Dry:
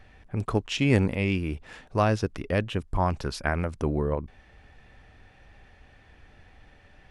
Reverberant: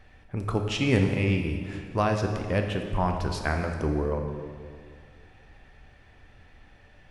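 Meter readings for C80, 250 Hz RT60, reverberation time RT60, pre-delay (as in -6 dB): 6.5 dB, 2.3 s, 2.0 s, 14 ms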